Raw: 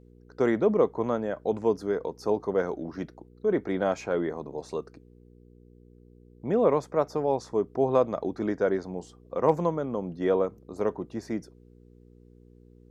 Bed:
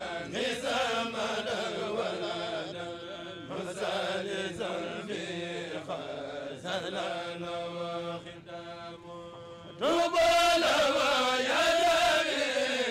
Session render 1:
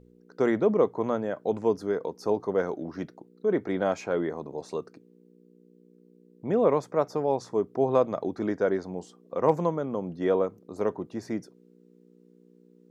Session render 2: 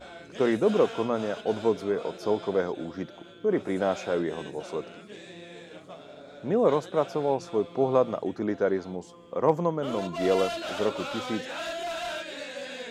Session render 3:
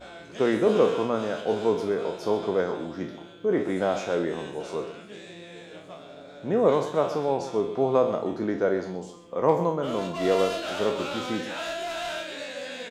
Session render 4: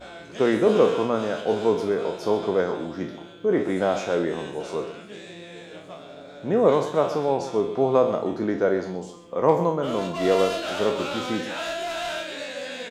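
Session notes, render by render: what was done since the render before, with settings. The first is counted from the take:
hum removal 60 Hz, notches 2
mix in bed −8.5 dB
peak hold with a decay on every bin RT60 0.42 s; single-tap delay 127 ms −12.5 dB
level +2.5 dB

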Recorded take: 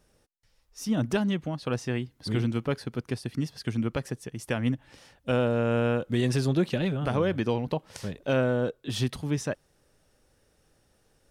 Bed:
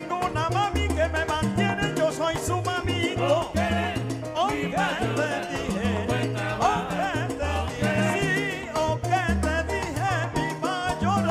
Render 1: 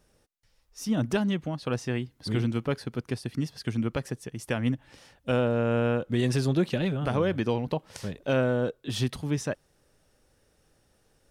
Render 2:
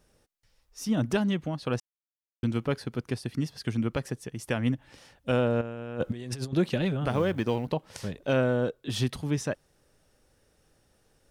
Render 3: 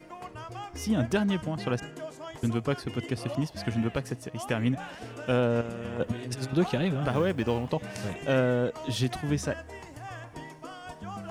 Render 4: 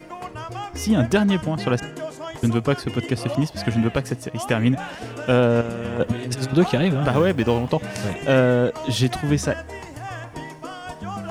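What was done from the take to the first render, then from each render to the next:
0:05.40–0:06.19: high-shelf EQ 4,400 Hz −5 dB
0:01.80–0:02.43: silence; 0:05.61–0:06.53: compressor whose output falls as the input rises −32 dBFS, ratio −0.5; 0:07.10–0:07.68: mu-law and A-law mismatch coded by A
mix in bed −16 dB
level +8 dB

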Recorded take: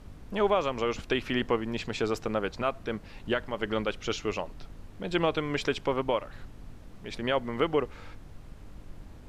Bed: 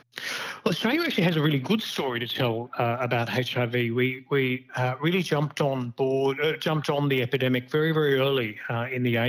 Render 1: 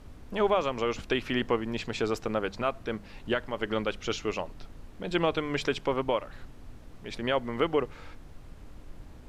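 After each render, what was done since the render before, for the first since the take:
hum removal 50 Hz, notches 4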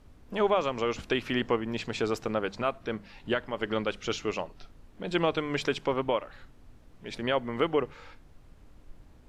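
noise reduction from a noise print 7 dB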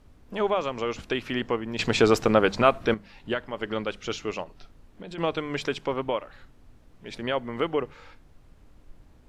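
0:01.79–0:02.94: clip gain +10 dB
0:04.43–0:05.18: downward compressor, threshold −36 dBFS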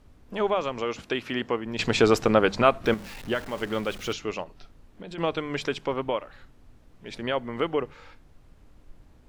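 0:00.81–0:01.66: high-pass filter 120 Hz 6 dB per octave
0:02.84–0:04.13: converter with a step at zero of −37.5 dBFS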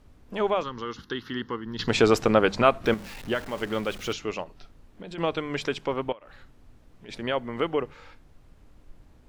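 0:00.63–0:01.88: phaser with its sweep stopped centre 2,400 Hz, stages 6
0:06.12–0:07.09: downward compressor 12 to 1, threshold −42 dBFS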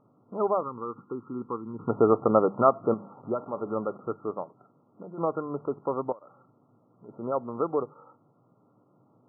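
brick-wall band-pass 100–1,400 Hz
low-shelf EQ 200 Hz −5 dB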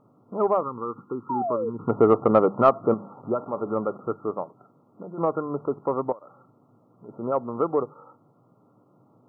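in parallel at −5 dB: soft clipping −14 dBFS, distortion −15 dB
0:01.29–0:01.70: on the sum: sound drawn into the spectrogram fall 430–990 Hz −27 dBFS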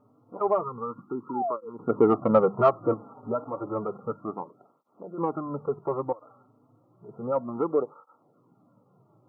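through-zero flanger with one copy inverted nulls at 0.31 Hz, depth 6.1 ms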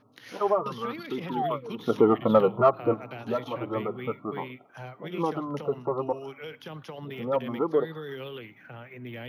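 mix in bed −15.5 dB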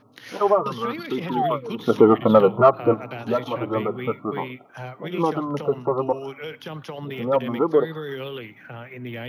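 level +6 dB
brickwall limiter −2 dBFS, peak gain reduction 1 dB

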